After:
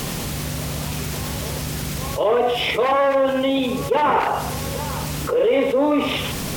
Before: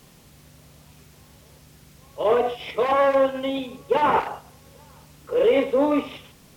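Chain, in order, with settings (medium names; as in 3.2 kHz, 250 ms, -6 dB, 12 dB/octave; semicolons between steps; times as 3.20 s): level flattener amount 70%; trim -1 dB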